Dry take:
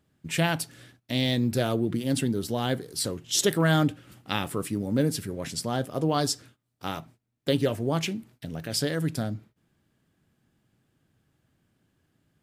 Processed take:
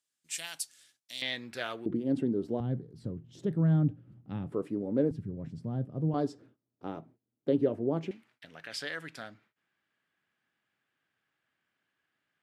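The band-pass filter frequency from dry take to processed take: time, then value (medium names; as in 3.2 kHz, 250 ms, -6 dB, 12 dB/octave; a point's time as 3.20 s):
band-pass filter, Q 1.2
7.4 kHz
from 1.22 s 1.9 kHz
from 1.86 s 350 Hz
from 2.60 s 140 Hz
from 4.52 s 420 Hz
from 5.11 s 140 Hz
from 6.14 s 350 Hz
from 8.11 s 1.9 kHz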